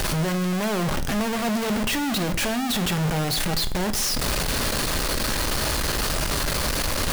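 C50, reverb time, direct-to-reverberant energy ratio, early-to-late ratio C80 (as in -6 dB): 14.5 dB, 0.55 s, 9.0 dB, 18.0 dB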